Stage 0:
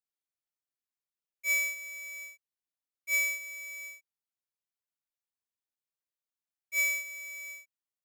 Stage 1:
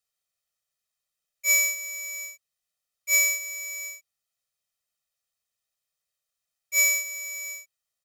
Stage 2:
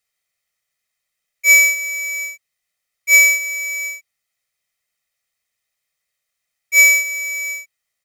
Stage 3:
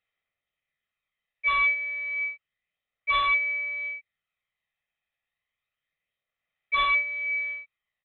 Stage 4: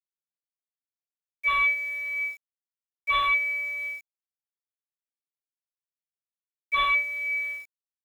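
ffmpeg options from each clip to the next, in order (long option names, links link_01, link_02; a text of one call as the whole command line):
ffmpeg -i in.wav -af "equalizer=frequency=6300:width=0.38:gain=5.5,aecho=1:1:1.6:0.91,volume=3.5dB" out.wav
ffmpeg -i in.wav -af "equalizer=frequency=2100:width_type=o:width=0.34:gain=12.5,volume=6dB" out.wav
ffmpeg -i in.wav -af "aphaser=in_gain=1:out_gain=1:delay=1.2:decay=0.31:speed=0.3:type=sinusoidal,aresample=8000,aeval=exprs='0.224*(abs(mod(val(0)/0.224+3,4)-2)-1)':channel_layout=same,aresample=44100,volume=-5dB" out.wav
ffmpeg -i in.wav -af "acrusher=bits=8:mix=0:aa=0.000001" out.wav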